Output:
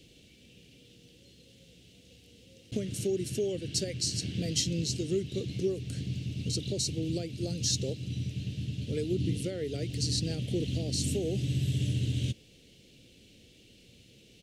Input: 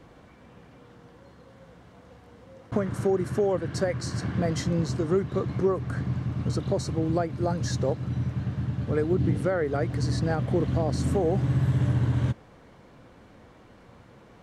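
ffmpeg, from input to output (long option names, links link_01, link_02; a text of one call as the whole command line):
ffmpeg -i in.wav -af "firequalizer=gain_entry='entry(420,0);entry(1000,-29);entry(2700,14)':delay=0.05:min_phase=1,volume=-6dB" out.wav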